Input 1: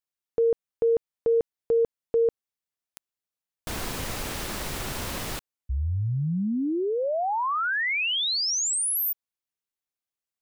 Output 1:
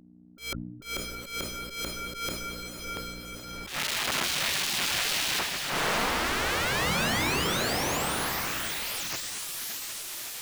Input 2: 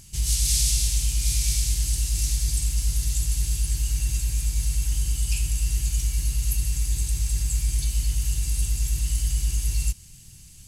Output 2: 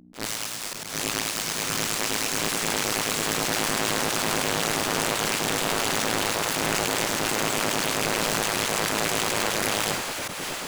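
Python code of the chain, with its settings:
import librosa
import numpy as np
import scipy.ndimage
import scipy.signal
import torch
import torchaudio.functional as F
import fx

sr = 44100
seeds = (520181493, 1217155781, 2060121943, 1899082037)

y = fx.schmitt(x, sr, flips_db=-34.0)
y = fx.low_shelf(y, sr, hz=310.0, db=-9.5)
y = fx.over_compress(y, sr, threshold_db=-30.0, ratio=-0.5)
y = fx.add_hum(y, sr, base_hz=60, snr_db=20)
y = fx.high_shelf(y, sr, hz=4900.0, db=-6.5)
y = fx.echo_diffused(y, sr, ms=638, feedback_pct=66, wet_db=-5.5)
y = fx.auto_swell(y, sr, attack_ms=103.0)
y = fx.spec_gate(y, sr, threshold_db=-10, keep='weak')
y = fx.transient(y, sr, attack_db=-7, sustain_db=1)
y = fx.hum_notches(y, sr, base_hz=50, count=2)
y = fx.sustainer(y, sr, db_per_s=53.0)
y = y * 10.0 ** (8.5 / 20.0)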